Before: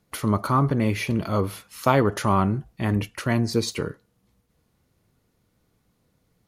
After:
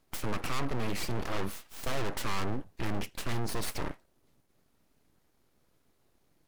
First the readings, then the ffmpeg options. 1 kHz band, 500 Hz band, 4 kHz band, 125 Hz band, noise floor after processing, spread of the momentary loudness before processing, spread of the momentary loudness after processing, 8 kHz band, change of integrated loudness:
-12.5 dB, -12.5 dB, -5.0 dB, -13.5 dB, -71 dBFS, 7 LU, 6 LU, -5.0 dB, -12.0 dB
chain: -af "aeval=exprs='(tanh(17.8*val(0)+0.35)-tanh(0.35))/17.8':c=same,aeval=exprs='abs(val(0))':c=same"

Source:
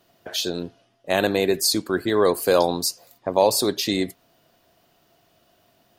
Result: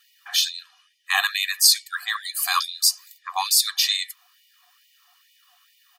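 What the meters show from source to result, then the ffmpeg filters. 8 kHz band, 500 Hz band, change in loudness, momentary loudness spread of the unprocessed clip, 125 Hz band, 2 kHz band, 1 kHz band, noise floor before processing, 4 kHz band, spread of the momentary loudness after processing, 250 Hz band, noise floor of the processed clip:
+6.0 dB, under -30 dB, +1.5 dB, 10 LU, under -40 dB, +5.0 dB, -2.0 dB, -63 dBFS, +6.5 dB, 13 LU, under -40 dB, -61 dBFS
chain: -af "aecho=1:1:1.7:0.8,afftfilt=real='re*gte(b*sr/1024,690*pow(1900/690,0.5+0.5*sin(2*PI*2.3*pts/sr)))':imag='im*gte(b*sr/1024,690*pow(1900/690,0.5+0.5*sin(2*PI*2.3*pts/sr)))':win_size=1024:overlap=0.75,volume=1.58"

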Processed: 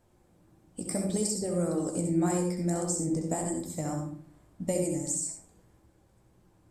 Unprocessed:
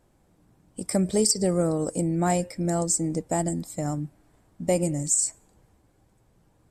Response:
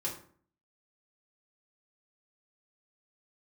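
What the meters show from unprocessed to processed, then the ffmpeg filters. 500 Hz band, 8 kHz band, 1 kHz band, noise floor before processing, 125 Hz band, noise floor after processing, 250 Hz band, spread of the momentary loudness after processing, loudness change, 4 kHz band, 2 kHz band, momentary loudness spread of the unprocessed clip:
-5.5 dB, -6.5 dB, -7.0 dB, -64 dBFS, -4.5 dB, -64 dBFS, -3.5 dB, 11 LU, -5.0 dB, -9.5 dB, -6.5 dB, 10 LU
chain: -filter_complex "[0:a]acrossover=split=1700|5900[s0][s1][s2];[s0]acompressor=threshold=0.0447:ratio=4[s3];[s1]acompressor=threshold=0.00398:ratio=4[s4];[s2]acompressor=threshold=0.0355:ratio=4[s5];[s3][s4][s5]amix=inputs=3:normalize=0,flanger=delay=8.8:depth=9.9:regen=42:speed=1.7:shape=sinusoidal,asplit=2[s6][s7];[1:a]atrim=start_sample=2205,adelay=64[s8];[s7][s8]afir=irnorm=-1:irlink=0,volume=0.501[s9];[s6][s9]amix=inputs=2:normalize=0,volume=1.19"

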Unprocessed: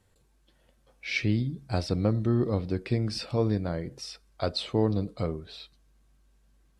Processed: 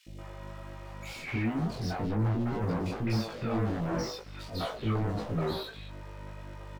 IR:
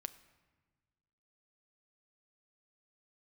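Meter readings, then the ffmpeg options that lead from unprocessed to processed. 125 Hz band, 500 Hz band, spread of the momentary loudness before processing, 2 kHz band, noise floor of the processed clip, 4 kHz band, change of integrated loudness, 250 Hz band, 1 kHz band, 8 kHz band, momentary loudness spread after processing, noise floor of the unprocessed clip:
-2.5 dB, -4.5 dB, 14 LU, -3.0 dB, -44 dBFS, -5.0 dB, -3.5 dB, -2.5 dB, +2.5 dB, -2.0 dB, 15 LU, -66 dBFS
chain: -filter_complex "[0:a]highpass=63,afftdn=nr=33:nf=-46,acrossover=split=200[s0][s1];[s1]acompressor=threshold=0.0158:ratio=16[s2];[s0][s2]amix=inputs=2:normalize=0,aeval=exprs='val(0)+0.00178*(sin(2*PI*50*n/s)+sin(2*PI*2*50*n/s)/2+sin(2*PI*3*50*n/s)/3+sin(2*PI*4*50*n/s)/4+sin(2*PI*5*50*n/s)/5)':c=same,acrusher=bits=10:mix=0:aa=0.000001,flanger=delay=18.5:depth=3.7:speed=1.9,asplit=2[s3][s4];[s4]highpass=f=720:p=1,volume=100,asoftclip=type=tanh:threshold=0.0944[s5];[s3][s5]amix=inputs=2:normalize=0,lowpass=f=1200:p=1,volume=0.501,asplit=2[s6][s7];[s7]adelay=18,volume=0.631[s8];[s6][s8]amix=inputs=2:normalize=0,acrossover=split=470|2800[s9][s10][s11];[s9]adelay=90[s12];[s10]adelay=210[s13];[s12][s13][s11]amix=inputs=3:normalize=0,volume=0.668"

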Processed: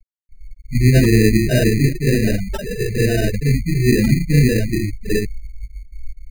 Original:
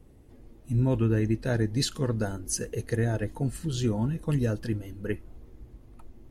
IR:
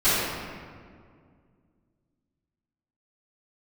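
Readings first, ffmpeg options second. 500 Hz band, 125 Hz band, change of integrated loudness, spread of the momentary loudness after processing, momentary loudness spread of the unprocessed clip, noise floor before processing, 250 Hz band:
+11.5 dB, +11.5 dB, +12.0 dB, 12 LU, 9 LU, -53 dBFS, +12.0 dB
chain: -filter_complex "[1:a]atrim=start_sample=2205,afade=t=out:st=0.18:d=0.01,atrim=end_sample=8379[s0];[0:a][s0]afir=irnorm=-1:irlink=0,afftfilt=real='re*gte(hypot(re,im),0.562)':imag='im*gte(hypot(re,im),0.562)':win_size=1024:overlap=0.75,acrusher=samples=20:mix=1:aa=0.000001,volume=0.596"

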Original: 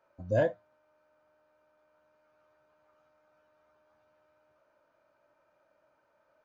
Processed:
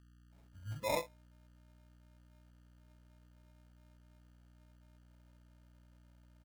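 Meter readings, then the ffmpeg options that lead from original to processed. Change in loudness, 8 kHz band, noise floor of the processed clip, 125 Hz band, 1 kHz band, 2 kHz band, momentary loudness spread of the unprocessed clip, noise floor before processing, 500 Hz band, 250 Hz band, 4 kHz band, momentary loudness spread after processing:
-9.5 dB, no reading, -64 dBFS, -8.5 dB, +1.0 dB, -4.5 dB, 3 LU, -72 dBFS, -10.0 dB, -9.5 dB, +9.0 dB, 15 LU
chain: -filter_complex "[0:a]acrossover=split=170|4000[s0][s1][s2];[s0]adelay=350[s3];[s1]adelay=520[s4];[s3][s4][s2]amix=inputs=3:normalize=0,flanger=delay=16.5:depth=4:speed=0.57,aeval=exprs='val(0)+0.00158*(sin(2*PI*60*n/s)+sin(2*PI*2*60*n/s)/2+sin(2*PI*3*60*n/s)/3+sin(2*PI*4*60*n/s)/4+sin(2*PI*5*60*n/s)/5)':c=same,acrusher=samples=29:mix=1:aa=0.000001,volume=0.531"

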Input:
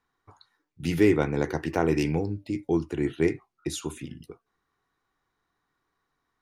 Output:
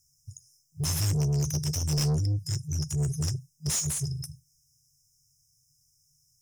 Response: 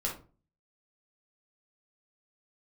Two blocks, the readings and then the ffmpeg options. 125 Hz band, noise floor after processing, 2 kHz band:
+6.0 dB, -69 dBFS, -12.5 dB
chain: -filter_complex "[0:a]asplit=2[s0][s1];[1:a]atrim=start_sample=2205,afade=t=out:st=0.15:d=0.01,atrim=end_sample=7056[s2];[s1][s2]afir=irnorm=-1:irlink=0,volume=0.133[s3];[s0][s3]amix=inputs=2:normalize=0,afftfilt=real='re*(1-between(b*sr/4096,160,5000))':imag='im*(1-between(b*sr/4096,160,5000))':win_size=4096:overlap=0.75,asplit=2[s4][s5];[s5]highpass=f=720:p=1,volume=31.6,asoftclip=type=tanh:threshold=0.0794[s6];[s4][s6]amix=inputs=2:normalize=0,lowpass=f=5900:p=1,volume=0.501,volume=1.5"

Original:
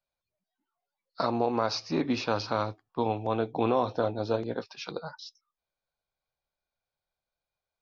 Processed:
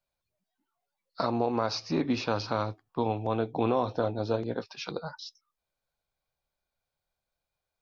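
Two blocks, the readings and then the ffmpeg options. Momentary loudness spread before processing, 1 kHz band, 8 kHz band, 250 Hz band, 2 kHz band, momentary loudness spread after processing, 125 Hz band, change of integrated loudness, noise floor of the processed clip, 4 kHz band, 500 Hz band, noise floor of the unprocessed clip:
12 LU, -1.5 dB, no reading, +0.5 dB, -1.0 dB, 10 LU, +2.0 dB, -0.5 dB, under -85 dBFS, -0.5 dB, -1.0 dB, under -85 dBFS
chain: -filter_complex "[0:a]asplit=2[s0][s1];[s1]acompressor=threshold=0.0158:ratio=6,volume=0.75[s2];[s0][s2]amix=inputs=2:normalize=0,lowshelf=f=220:g=4,volume=0.708"

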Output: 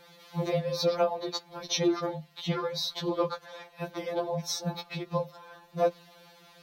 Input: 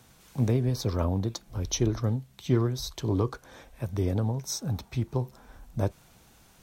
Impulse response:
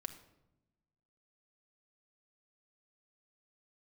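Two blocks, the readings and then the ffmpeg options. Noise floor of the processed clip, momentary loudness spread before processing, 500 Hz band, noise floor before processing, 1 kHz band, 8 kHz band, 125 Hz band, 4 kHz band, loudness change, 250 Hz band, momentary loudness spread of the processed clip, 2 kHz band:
-57 dBFS, 9 LU, +4.0 dB, -58 dBFS, +6.0 dB, -3.0 dB, -11.0 dB, +5.5 dB, -1.5 dB, -3.5 dB, 12 LU, +4.5 dB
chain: -af "equalizer=f=250:t=o:w=1:g=-4,equalizer=f=500:t=o:w=1:g=9,equalizer=f=1000:t=o:w=1:g=5,equalizer=f=2000:t=o:w=1:g=5,equalizer=f=4000:t=o:w=1:g=11,equalizer=f=8000:t=o:w=1:g=-8,afreqshift=22,afftfilt=real='re*2.83*eq(mod(b,8),0)':imag='im*2.83*eq(mod(b,8),0)':win_size=2048:overlap=0.75"

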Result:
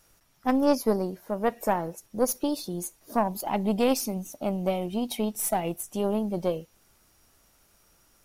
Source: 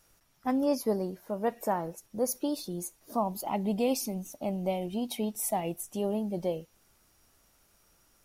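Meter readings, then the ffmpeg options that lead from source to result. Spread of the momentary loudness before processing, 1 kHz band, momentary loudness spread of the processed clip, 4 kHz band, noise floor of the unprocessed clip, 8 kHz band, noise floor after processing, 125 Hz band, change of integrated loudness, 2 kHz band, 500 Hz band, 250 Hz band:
7 LU, +4.5 dB, 8 LU, +4.0 dB, -67 dBFS, +3.5 dB, -64 dBFS, +3.5 dB, +4.0 dB, +7.0 dB, +4.0 dB, +4.0 dB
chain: -af "aeval=exprs='0.15*(cos(1*acos(clip(val(0)/0.15,-1,1)))-cos(1*PI/2))+0.0266*(cos(2*acos(clip(val(0)/0.15,-1,1)))-cos(2*PI/2))+0.0119*(cos(3*acos(clip(val(0)/0.15,-1,1)))-cos(3*PI/2))':c=same,volume=1.88"

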